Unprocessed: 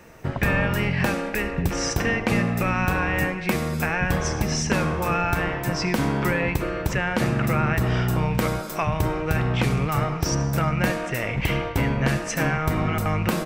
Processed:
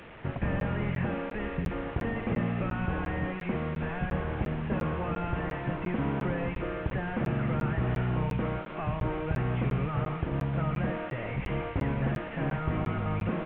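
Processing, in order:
linear delta modulator 16 kbit/s, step −35.5 dBFS
regular buffer underruns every 0.35 s, samples 512, zero, from 0:00.60
level −6 dB

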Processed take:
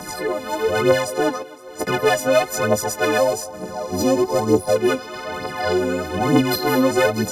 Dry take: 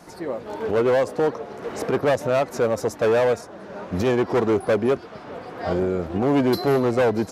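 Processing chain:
every partial snapped to a pitch grid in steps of 3 semitones
0:01.42–0:01.87: noise gate −23 dBFS, range −24 dB
0:03.17–0:04.76: flat-topped bell 2,100 Hz −12 dB
phase shifter 1.1 Hz, delay 4.1 ms, feedback 64%
feedback echo with a high-pass in the loop 256 ms, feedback 68%, high-pass 200 Hz, level −24 dB
multiband upward and downward compressor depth 40%

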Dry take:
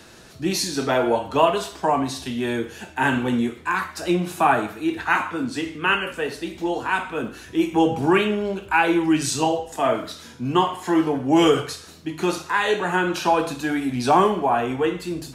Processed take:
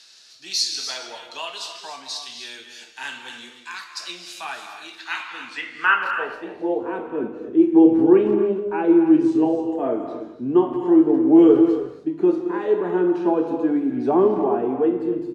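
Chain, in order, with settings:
band-pass filter sweep 4,700 Hz → 350 Hz, 0:05.00–0:06.92
far-end echo of a speakerphone 170 ms, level −15 dB
reverb whose tail is shaped and stops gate 320 ms rising, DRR 7.5 dB
level +6 dB

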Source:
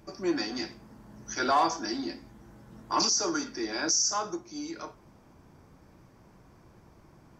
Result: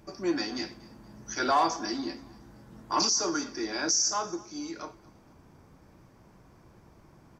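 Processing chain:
repeating echo 236 ms, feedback 41%, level −22.5 dB

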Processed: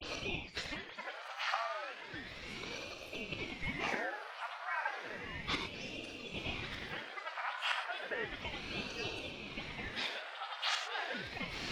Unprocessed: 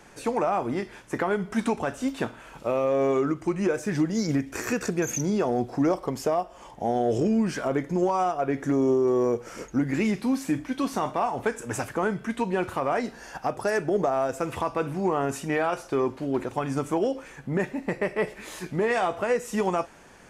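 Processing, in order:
every frequency bin delayed by itself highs late, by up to 209 ms
high-shelf EQ 7,900 Hz +5 dB
gate with flip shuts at −28 dBFS, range −25 dB
high-frequency loss of the air 400 metres
reverb whose tail is shaped and stops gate 240 ms flat, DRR 3 dB
wrong playback speed 45 rpm record played at 78 rpm
Butterworth high-pass 900 Hz 72 dB per octave
feedback delay with all-pass diffusion 1,137 ms, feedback 67%, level −7.5 dB
ring modulator whose carrier an LFO sweeps 880 Hz, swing 75%, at 0.33 Hz
level +15.5 dB

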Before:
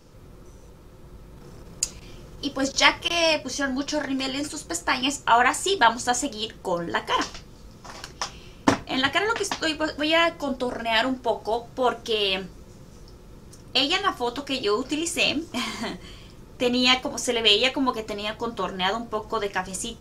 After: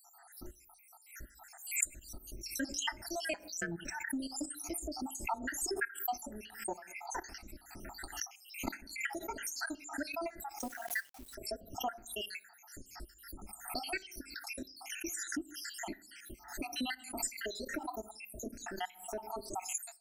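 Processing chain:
time-frequency cells dropped at random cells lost 77%
phaser with its sweep stopped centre 720 Hz, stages 8
0:03.33–0:03.79: ring modulation 85 Hz
on a send at −20.5 dB: convolution reverb RT60 0.40 s, pre-delay 3 ms
on the sum: downward compressor 2 to 1, threshold −53 dBFS, peak gain reduction 18 dB
0:10.59–0:11.35: log-companded quantiser 6 bits
high-shelf EQ 6,200 Hz +10 dB
background raised ahead of every attack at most 110 dB per second
level +5.5 dB

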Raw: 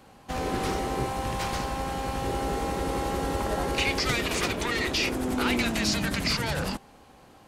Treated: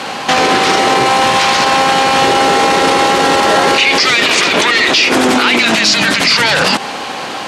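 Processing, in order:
spectral tilt +3.5 dB per octave
downward compressor, threshold −28 dBFS, peak gain reduction 11 dB
band-pass filter 140–4,100 Hz
boost into a limiter +34 dB
level −1 dB

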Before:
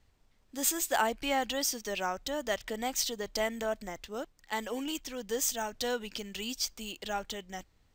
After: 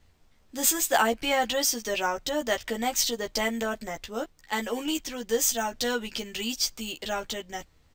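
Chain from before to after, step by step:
double-tracking delay 13 ms −4 dB
level +4.5 dB

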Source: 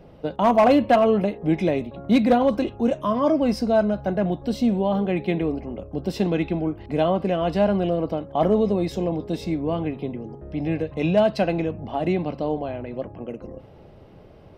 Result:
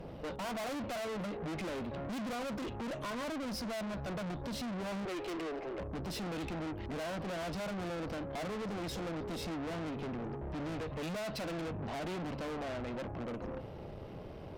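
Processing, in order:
0:05.05–0:05.79: elliptic high-pass filter 330 Hz
in parallel at +1 dB: downward compressor, threshold −27 dBFS, peak gain reduction 13.5 dB
on the sum: tube saturation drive 35 dB, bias 0.5
level −2.5 dB

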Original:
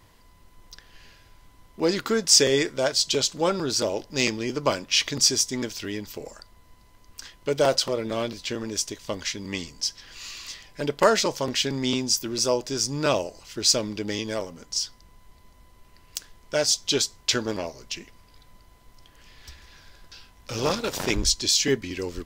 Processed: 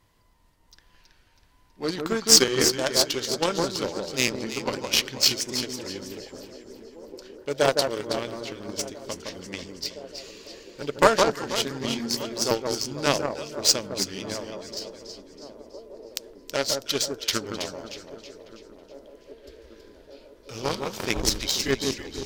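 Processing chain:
pitch shifter gated in a rhythm −1.5 semitones, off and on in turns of 338 ms
delay that swaps between a low-pass and a high-pass 162 ms, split 1,400 Hz, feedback 69%, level −2.5 dB
harmonic generator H 5 −38 dB, 7 −19 dB, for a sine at −3 dBFS
on a send: feedback echo with a band-pass in the loop 1,179 ms, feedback 84%, band-pass 400 Hz, level −16.5 dB
on the sum: level +2.5 dB

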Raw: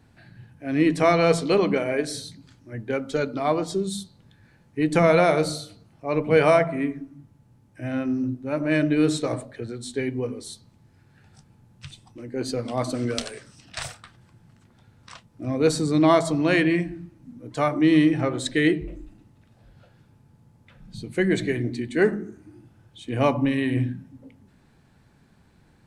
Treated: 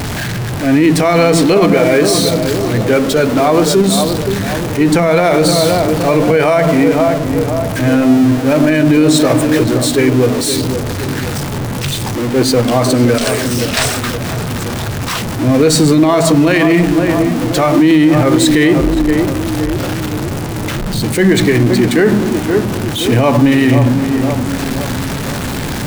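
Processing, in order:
converter with a step at zero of −28.5 dBFS
on a send: tape delay 520 ms, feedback 63%, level −7.5 dB, low-pass 1,000 Hz
on the sum: boost into a limiter +15 dB
level that may rise only so fast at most 200 dB per second
level −1 dB

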